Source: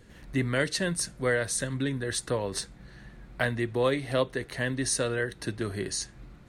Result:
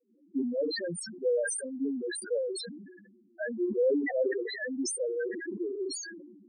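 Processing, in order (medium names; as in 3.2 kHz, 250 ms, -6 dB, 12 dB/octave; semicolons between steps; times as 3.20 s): expander -48 dBFS; high-pass 250 Hz 24 dB/octave; level-controlled noise filter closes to 730 Hz, open at -31 dBFS; loudest bins only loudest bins 2; decay stretcher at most 41 dB/s; trim +2 dB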